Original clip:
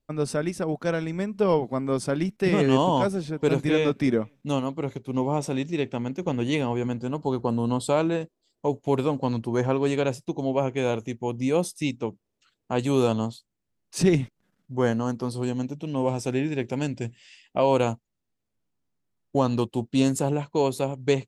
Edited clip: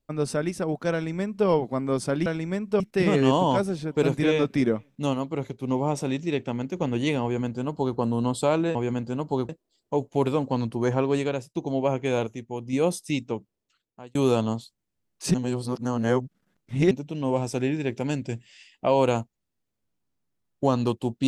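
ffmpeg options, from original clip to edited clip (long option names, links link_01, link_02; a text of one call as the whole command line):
ffmpeg -i in.wav -filter_complex "[0:a]asplit=11[link_01][link_02][link_03][link_04][link_05][link_06][link_07][link_08][link_09][link_10][link_11];[link_01]atrim=end=2.262[link_12];[link_02]atrim=start=0.928:end=1.472[link_13];[link_03]atrim=start=2.258:end=8.212[link_14];[link_04]atrim=start=6.688:end=7.432[link_15];[link_05]atrim=start=8.208:end=10.27,asetpts=PTS-STARTPTS,afade=type=out:start_time=1.652:duration=0.41:silence=0.281838[link_16];[link_06]atrim=start=10.27:end=10.992,asetpts=PTS-STARTPTS,afade=type=in:duration=0.004:curve=hsin:silence=0.281838[link_17];[link_07]atrim=start=10.988:end=11.452,asetpts=PTS-STARTPTS,volume=-4.5dB[link_18];[link_08]atrim=start=11.448:end=12.87,asetpts=PTS-STARTPTS,afade=type=out:start_time=0.562:duration=0.86[link_19];[link_09]atrim=start=12.87:end=14.062,asetpts=PTS-STARTPTS,afade=type=in:duration=0.004:curve=hsin[link_20];[link_10]atrim=start=14.058:end=15.632,asetpts=PTS-STARTPTS,areverse[link_21];[link_11]atrim=start=15.628[link_22];[link_12][link_13]acrossfade=duration=0.004:curve1=hsin:curve2=hsin[link_23];[link_23][link_14]acrossfade=duration=0.004:curve1=hsin:curve2=hsin[link_24];[link_24][link_15]acrossfade=duration=0.004:curve1=hsin:curve2=hsin[link_25];[link_16][link_17]concat=n=2:v=0:a=1[link_26];[link_25][link_26]acrossfade=duration=0.004:curve1=hsin:curve2=hsin[link_27];[link_27][link_18]acrossfade=duration=0.004:curve1=hsin:curve2=hsin[link_28];[link_19][link_20]concat=n=2:v=0:a=1[link_29];[link_28][link_29]acrossfade=duration=0.004:curve1=hsin:curve2=hsin[link_30];[link_30][link_21]acrossfade=duration=0.004:curve1=hsin:curve2=hsin[link_31];[link_31][link_22]acrossfade=duration=0.004:curve1=hsin:curve2=hsin" out.wav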